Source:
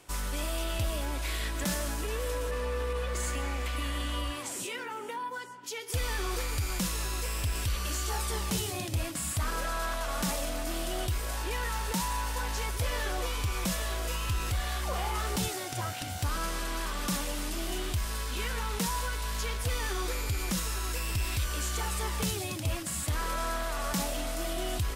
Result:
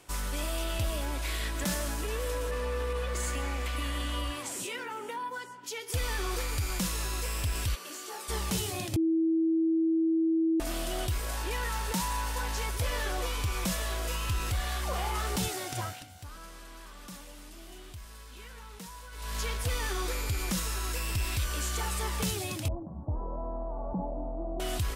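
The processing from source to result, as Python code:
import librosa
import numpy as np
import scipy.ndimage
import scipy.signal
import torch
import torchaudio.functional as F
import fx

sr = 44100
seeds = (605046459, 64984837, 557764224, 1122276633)

y = fx.ladder_highpass(x, sr, hz=240.0, resonance_pct=30, at=(7.74, 8.28), fade=0.02)
y = fx.ellip_lowpass(y, sr, hz=900.0, order=4, stop_db=60, at=(22.68, 24.6))
y = fx.edit(y, sr, fx.bleep(start_s=8.96, length_s=1.64, hz=325.0, db=-23.0),
    fx.fade_down_up(start_s=15.79, length_s=3.6, db=-14.0, fade_s=0.28), tone=tone)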